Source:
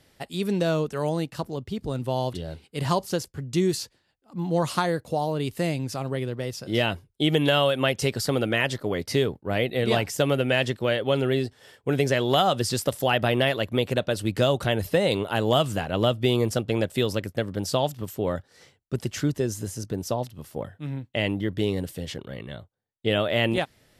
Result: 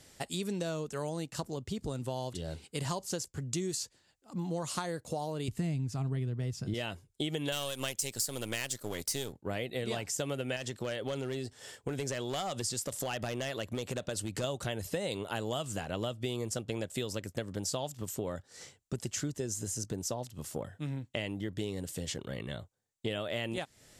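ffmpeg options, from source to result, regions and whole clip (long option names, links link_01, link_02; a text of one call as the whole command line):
ffmpeg -i in.wav -filter_complex "[0:a]asettb=1/sr,asplit=3[link_01][link_02][link_03];[link_01]atrim=end=5.484[link_04];[link_02]atrim=start=5.48:end=6.74,asetpts=PTS-STARTPTS,afade=type=in:duration=0.004:curve=qsin,afade=type=out:start_time=1.256:duration=0.004:curve=qsin,bass=frequency=250:gain=14,treble=frequency=4000:gain=-6,bandreject=frequency=540:width=5.6[link_05];[link_03]atrim=start=6.736[link_06];[link_04][link_05]acrossfade=duration=0.004:curve1=hsin:curve2=qsin[link_07];[link_07][link_06]acrossfade=duration=0.004:curve1=qsin:curve2=hsin,asettb=1/sr,asplit=3[link_08][link_09][link_10];[link_08]atrim=end=7.524[link_11];[link_09]atrim=start=7.52:end=9.33,asetpts=PTS-STARTPTS,afade=type=in:duration=0.004:curve=qsin,afade=type=out:start_time=1.806:duration=0.004:curve=qsin,aeval=exprs='if(lt(val(0),0),0.447*val(0),val(0))':channel_layout=same,aemphasis=mode=production:type=75fm[link_12];[link_10]atrim=start=9.326[link_13];[link_11][link_12]acrossfade=duration=0.004:curve1=hsin:curve2=qsin[link_14];[link_14][link_13]acrossfade=duration=0.004:curve1=qsin:curve2=hsin,asettb=1/sr,asplit=3[link_15][link_16][link_17];[link_15]atrim=end=10.564[link_18];[link_16]atrim=start=10.56:end=14.44,asetpts=PTS-STARTPTS,afade=type=in:duration=0.004:curve=qsin,afade=type=out:start_time=3.876:duration=0.004:curve=qsin,asoftclip=type=hard:threshold=-15.5dB,acompressor=threshold=-27dB:ratio=2:attack=3.2:release=140:knee=1:detection=peak[link_19];[link_17]atrim=start=14.436[link_20];[link_18][link_19]acrossfade=duration=0.004:curve1=hsin:curve2=qsin[link_21];[link_21][link_20]acrossfade=duration=0.004:curve1=qsin:curve2=hsin,equalizer=frequency=7300:width_type=o:width=0.83:gain=12,acompressor=threshold=-34dB:ratio=4" out.wav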